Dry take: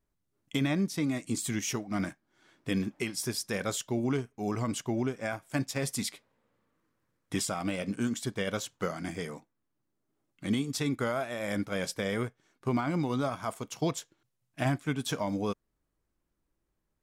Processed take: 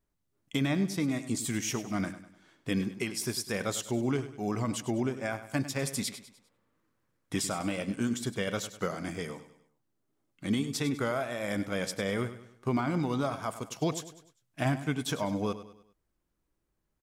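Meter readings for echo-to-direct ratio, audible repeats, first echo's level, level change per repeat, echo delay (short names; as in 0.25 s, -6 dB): -12.0 dB, 3, -13.0 dB, -7.5 dB, 0.1 s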